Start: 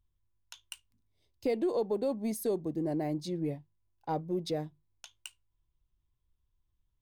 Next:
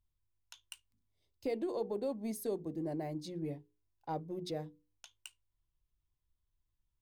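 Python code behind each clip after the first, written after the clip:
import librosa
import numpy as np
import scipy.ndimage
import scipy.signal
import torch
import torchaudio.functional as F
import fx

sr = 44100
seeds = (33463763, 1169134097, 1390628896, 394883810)

y = fx.hum_notches(x, sr, base_hz=60, count=8)
y = y * 10.0 ** (-5.0 / 20.0)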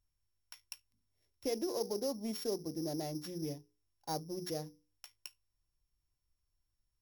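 y = np.r_[np.sort(x[:len(x) // 8 * 8].reshape(-1, 8), axis=1).ravel(), x[len(x) // 8 * 8:]]
y = fx.bass_treble(y, sr, bass_db=-1, treble_db=3)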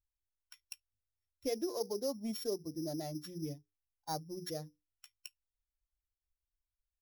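y = fx.bin_expand(x, sr, power=1.5)
y = y * 10.0 ** (1.5 / 20.0)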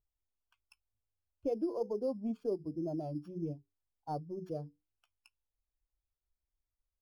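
y = fx.wow_flutter(x, sr, seeds[0], rate_hz=2.1, depth_cents=75.0)
y = scipy.signal.lfilter(np.full(23, 1.0 / 23), 1.0, y)
y = y * 10.0 ** (3.0 / 20.0)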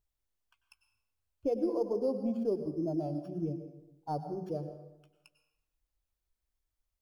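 y = fx.rev_plate(x, sr, seeds[1], rt60_s=1.0, hf_ratio=0.65, predelay_ms=85, drr_db=8.5)
y = y * 10.0 ** (3.0 / 20.0)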